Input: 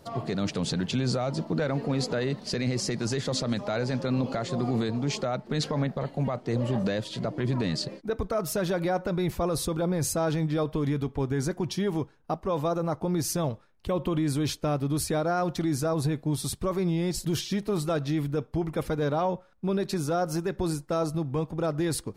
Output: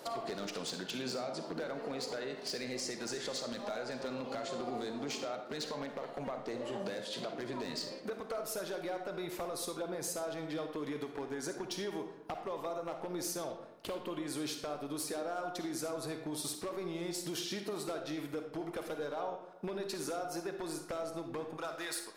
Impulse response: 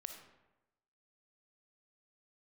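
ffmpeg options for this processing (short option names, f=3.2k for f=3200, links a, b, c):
-filter_complex "[0:a]asetnsamples=n=441:p=0,asendcmd='21.57 highpass f 1000',highpass=370,acompressor=threshold=-43dB:ratio=10,aeval=exprs='0.0133*(abs(mod(val(0)/0.0133+3,4)-2)-1)':c=same[a];[1:a]atrim=start_sample=2205,asetrate=48510,aresample=44100[b];[a][b]afir=irnorm=-1:irlink=0,volume=12dB"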